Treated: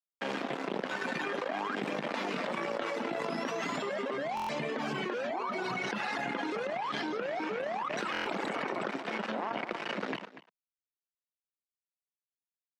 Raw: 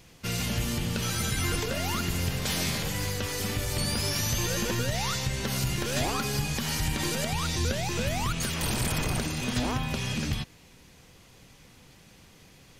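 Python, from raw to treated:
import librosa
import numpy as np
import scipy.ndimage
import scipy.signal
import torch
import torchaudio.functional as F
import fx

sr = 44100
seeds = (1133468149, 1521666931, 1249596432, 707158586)

p1 = fx.doppler_pass(x, sr, speed_mps=44, closest_m=10.0, pass_at_s=5.15)
p2 = fx.dereverb_blind(p1, sr, rt60_s=1.6)
p3 = np.sign(p2) * np.maximum(np.abs(p2) - 10.0 ** (-48.0 / 20.0), 0.0)
p4 = p2 + (p3 * librosa.db_to_amplitude(-3.5))
p5 = fx.vibrato(p4, sr, rate_hz=0.84, depth_cents=11.0)
p6 = np.sign(p5) * np.maximum(np.abs(p5) - 10.0 ** (-58.5 / 20.0), 0.0)
p7 = scipy.signal.sosfilt(scipy.signal.butter(2, 1500.0, 'lowpass', fs=sr, output='sos'), p6)
p8 = p7 + fx.echo_single(p7, sr, ms=241, db=-20.0, dry=0)
p9 = fx.rider(p8, sr, range_db=4, speed_s=0.5)
p10 = scipy.signal.sosfilt(scipy.signal.bessel(8, 360.0, 'highpass', norm='mag', fs=sr, output='sos'), p9)
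p11 = fx.buffer_glitch(p10, sr, at_s=(4.35, 8.12), block=1024, repeats=5)
y = fx.env_flatten(p11, sr, amount_pct=100)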